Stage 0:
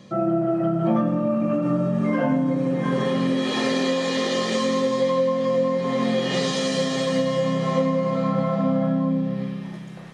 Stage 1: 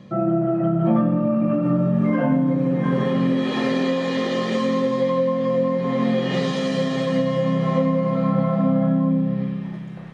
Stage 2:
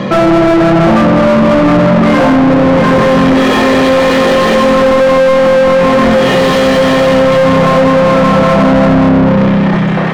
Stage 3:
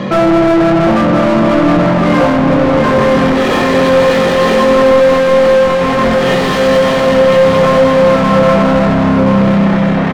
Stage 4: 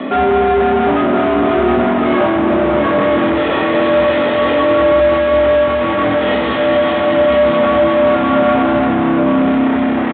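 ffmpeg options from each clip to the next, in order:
-af "bass=f=250:g=5,treble=f=4k:g=-11"
-filter_complex "[0:a]asplit=2[a][b];[b]alimiter=limit=-16dB:level=0:latency=1,volume=1dB[c];[a][c]amix=inputs=2:normalize=0,asplit=2[d][e];[e]highpass=f=720:p=1,volume=35dB,asoftclip=type=tanh:threshold=-4.5dB[f];[d][f]amix=inputs=2:normalize=0,lowpass=f=1.4k:p=1,volume=-6dB,volume=3.5dB"
-filter_complex "[0:a]asplit=2[a][b];[b]adelay=21,volume=-12dB[c];[a][c]amix=inputs=2:normalize=0,asplit=2[d][e];[e]aecho=0:1:1021:0.422[f];[d][f]amix=inputs=2:normalize=0,volume=-3dB"
-af "afreqshift=66,aresample=8000,aresample=44100,volume=-3.5dB"

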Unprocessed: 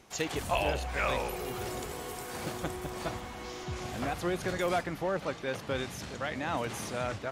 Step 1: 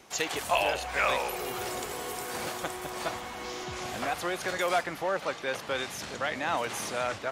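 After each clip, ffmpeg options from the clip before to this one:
-filter_complex "[0:a]lowshelf=f=180:g=-10.5,acrossover=split=490|6500[a][b][c];[a]alimiter=level_in=14.5dB:limit=-24dB:level=0:latency=1:release=443,volume=-14.5dB[d];[d][b][c]amix=inputs=3:normalize=0,volume=5dB"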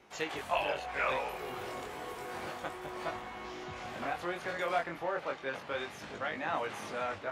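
-af "bass=f=250:g=-1,treble=f=4k:g=-12,flanger=delay=19:depth=4.8:speed=0.31,volume=-1.5dB"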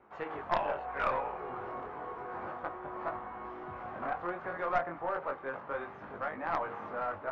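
-af "lowpass=f=1.2k:t=q:w=1.7,aeval=exprs='0.168*(cos(1*acos(clip(val(0)/0.168,-1,1)))-cos(1*PI/2))+0.0422*(cos(4*acos(clip(val(0)/0.168,-1,1)))-cos(4*PI/2))+0.0168*(cos(6*acos(clip(val(0)/0.168,-1,1)))-cos(6*PI/2))':c=same,bandreject=f=78.3:t=h:w=4,bandreject=f=156.6:t=h:w=4,bandreject=f=234.9:t=h:w=4,bandreject=f=313.2:t=h:w=4,bandreject=f=391.5:t=h:w=4,bandreject=f=469.8:t=h:w=4,bandreject=f=548.1:t=h:w=4,bandreject=f=626.4:t=h:w=4,bandreject=f=704.7:t=h:w=4,bandreject=f=783:t=h:w=4,bandreject=f=861.3:t=h:w=4,bandreject=f=939.6:t=h:w=4,bandreject=f=1.0179k:t=h:w=4,volume=-1.5dB"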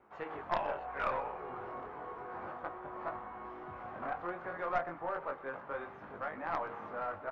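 -af "aecho=1:1:124:0.119,volume=-3dB"

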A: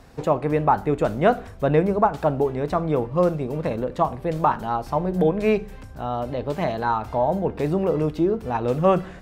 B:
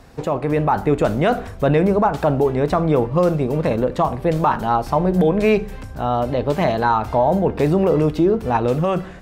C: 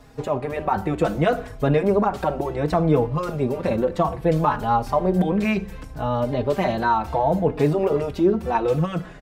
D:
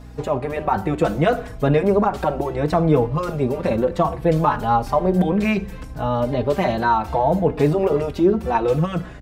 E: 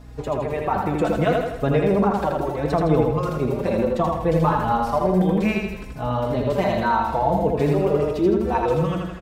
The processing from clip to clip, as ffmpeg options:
-filter_complex "[0:a]acrossover=split=2200[a][b];[a]alimiter=limit=-15dB:level=0:latency=1:release=27[c];[c][b]amix=inputs=2:normalize=0,dynaudnorm=f=130:g=9:m=4dB,volume=3dB"
-filter_complex "[0:a]asplit=2[a][b];[b]adelay=4.3,afreqshift=-0.66[c];[a][c]amix=inputs=2:normalize=1"
-af "aeval=exprs='val(0)+0.00891*(sin(2*PI*60*n/s)+sin(2*PI*2*60*n/s)/2+sin(2*PI*3*60*n/s)/3+sin(2*PI*4*60*n/s)/4+sin(2*PI*5*60*n/s)/5)':c=same,volume=2dB"
-af "aecho=1:1:81|162|243|324|405|486|567:0.708|0.361|0.184|0.0939|0.0479|0.0244|0.0125,volume=-3.5dB"

